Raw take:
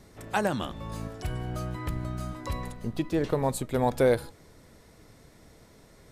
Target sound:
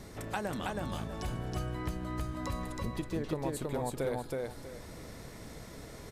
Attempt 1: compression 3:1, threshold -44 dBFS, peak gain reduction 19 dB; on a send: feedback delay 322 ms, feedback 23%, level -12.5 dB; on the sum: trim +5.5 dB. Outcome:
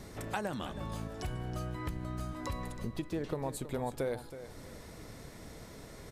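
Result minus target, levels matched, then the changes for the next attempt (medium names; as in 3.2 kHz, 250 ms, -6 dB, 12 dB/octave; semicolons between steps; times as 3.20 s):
echo-to-direct -10.5 dB
change: feedback delay 322 ms, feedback 23%, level -2 dB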